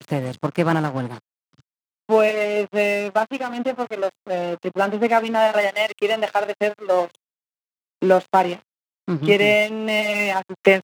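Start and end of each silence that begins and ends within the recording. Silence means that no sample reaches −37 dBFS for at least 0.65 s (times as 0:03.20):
0:01.18–0:02.09
0:07.15–0:08.02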